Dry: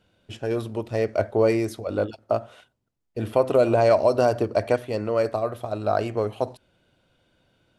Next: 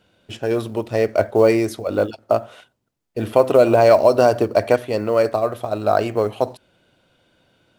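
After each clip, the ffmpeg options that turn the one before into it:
-af "lowshelf=f=100:g=-8.5,acrusher=bits=9:mode=log:mix=0:aa=0.000001,volume=2"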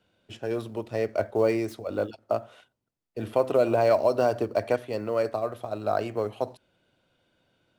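-filter_complex "[0:a]highshelf=f=8600:g=-3.5,acrossover=split=150|5400[s0][s1][s2];[s2]aeval=exprs='(mod(50.1*val(0)+1,2)-1)/50.1':c=same[s3];[s0][s1][s3]amix=inputs=3:normalize=0,volume=0.355"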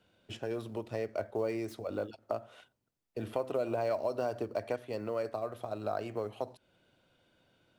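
-af "acompressor=threshold=0.0126:ratio=2"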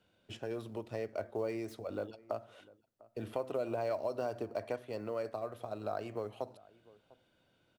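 -filter_complex "[0:a]asplit=2[s0][s1];[s1]adelay=699.7,volume=0.0794,highshelf=f=4000:g=-15.7[s2];[s0][s2]amix=inputs=2:normalize=0,volume=0.708"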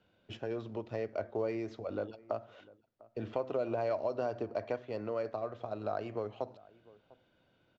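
-af "aresample=16000,aresample=44100,adynamicsmooth=sensitivity=4.5:basefreq=5000,volume=1.26"

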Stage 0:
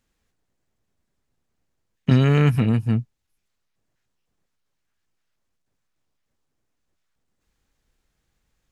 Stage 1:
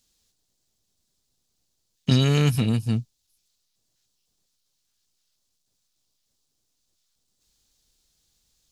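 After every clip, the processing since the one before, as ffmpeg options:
-af "highshelf=f=2900:t=q:w=1.5:g=13,volume=0.708"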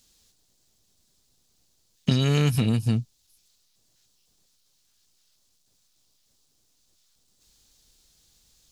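-af "acompressor=threshold=0.0501:ratio=6,volume=2.24"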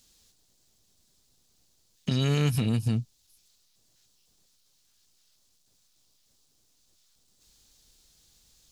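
-af "alimiter=limit=0.141:level=0:latency=1:release=187"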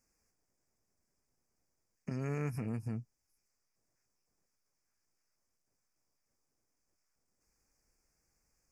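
-af "asuperstop=centerf=3500:order=8:qfactor=1.4,bass=f=250:g=-5,treble=f=4000:g=-10,volume=0.398"

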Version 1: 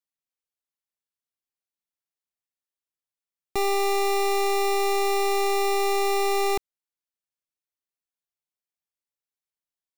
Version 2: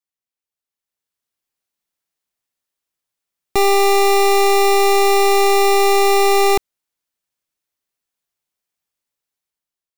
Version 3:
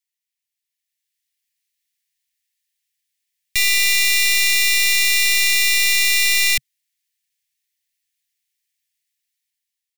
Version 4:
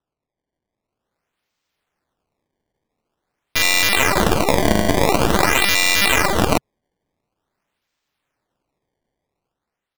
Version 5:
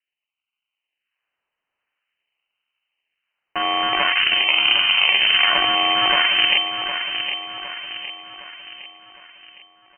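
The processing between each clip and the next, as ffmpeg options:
-af "dynaudnorm=f=390:g=5:m=3.16"
-af "firequalizer=gain_entry='entry(130,0);entry(270,-29);entry(1100,-24);entry(1800,11)':delay=0.05:min_phase=1,volume=0.562"
-af "acrusher=samples=19:mix=1:aa=0.000001:lfo=1:lforange=30.4:lforate=0.47"
-filter_complex "[0:a]asplit=2[s0][s1];[s1]aecho=0:1:761|1522|2283|3044|3805:0.376|0.177|0.083|0.039|0.0183[s2];[s0][s2]amix=inputs=2:normalize=0,lowpass=f=2600:t=q:w=0.5098,lowpass=f=2600:t=q:w=0.6013,lowpass=f=2600:t=q:w=0.9,lowpass=f=2600:t=q:w=2.563,afreqshift=-3100,volume=0.794"

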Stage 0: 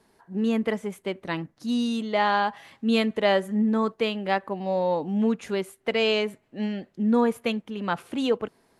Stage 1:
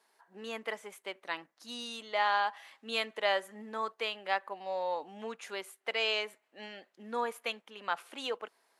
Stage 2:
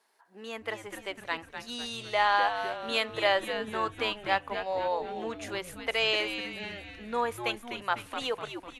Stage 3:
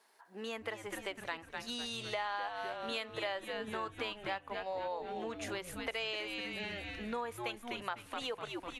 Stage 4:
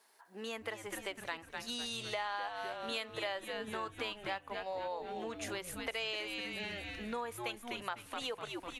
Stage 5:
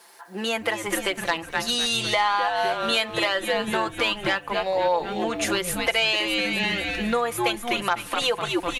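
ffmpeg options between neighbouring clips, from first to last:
-af "highpass=740,volume=0.631"
-filter_complex "[0:a]dynaudnorm=f=500:g=3:m=1.58,asplit=7[s0][s1][s2][s3][s4][s5][s6];[s1]adelay=250,afreqshift=-120,volume=0.376[s7];[s2]adelay=500,afreqshift=-240,volume=0.193[s8];[s3]adelay=750,afreqshift=-360,volume=0.0977[s9];[s4]adelay=1000,afreqshift=-480,volume=0.0501[s10];[s5]adelay=1250,afreqshift=-600,volume=0.0254[s11];[s6]adelay=1500,afreqshift=-720,volume=0.013[s12];[s0][s7][s8][s9][s10][s11][s12]amix=inputs=7:normalize=0"
-af "acompressor=threshold=0.01:ratio=4,volume=1.33"
-af "highshelf=f=5500:g=6,volume=0.891"
-af "aecho=1:1:5.8:0.59,aeval=exprs='0.106*sin(PI/2*1.58*val(0)/0.106)':c=same,volume=2.37"

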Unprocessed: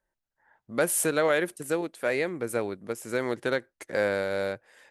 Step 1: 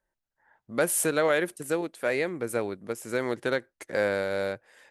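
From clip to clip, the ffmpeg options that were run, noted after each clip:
-af anull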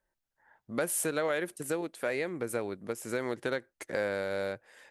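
-af "acompressor=threshold=0.0251:ratio=2"

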